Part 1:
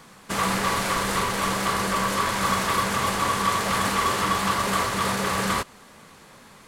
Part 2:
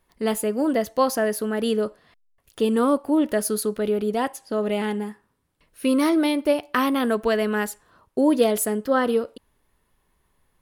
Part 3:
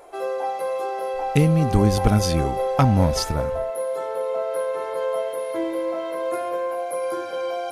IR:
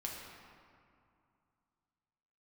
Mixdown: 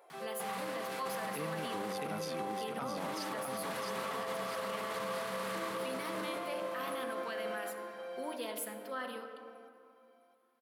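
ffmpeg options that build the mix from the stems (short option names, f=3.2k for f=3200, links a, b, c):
-filter_complex "[0:a]alimiter=limit=-18.5dB:level=0:latency=1:release=315,adelay=100,volume=0.5dB,asplit=3[a][b][c];[a]atrim=end=1.27,asetpts=PTS-STARTPTS,afade=t=out:st=1.266:d=0.004:c=hsin[d];[b]atrim=start=1.27:end=2.97,asetpts=PTS-STARTPTS,volume=0[e];[c]atrim=start=2.97,asetpts=PTS-STARTPTS,afade=t=in:d=0.004:c=hsin[f];[d][e][f]concat=n=3:v=0:a=1,asplit=2[g][h];[h]volume=-13dB[i];[1:a]highpass=f=950:p=1,volume=-13dB,asplit=3[j][k][l];[k]volume=-3dB[m];[2:a]highpass=f=590:p=1,volume=-12dB,asplit=2[n][o];[o]volume=-4dB[p];[l]apad=whole_len=298640[q];[g][q]sidechaincompress=threshold=-46dB:ratio=8:attack=16:release=666[r];[r][j]amix=inputs=2:normalize=0,equalizer=f=440:w=1:g=-14.5,alimiter=level_in=8dB:limit=-24dB:level=0:latency=1,volume=-8dB,volume=0dB[s];[3:a]atrim=start_sample=2205[t];[m][t]afir=irnorm=-1:irlink=0[u];[i][p]amix=inputs=2:normalize=0,aecho=0:1:659|1318|1977|2636|3295|3954:1|0.43|0.185|0.0795|0.0342|0.0147[v];[n][s][u][v]amix=inputs=4:normalize=0,highpass=f=150:w=0.5412,highpass=f=150:w=1.3066,equalizer=f=7k:t=o:w=0.93:g=-7.5,alimiter=level_in=5dB:limit=-24dB:level=0:latency=1:release=39,volume=-5dB"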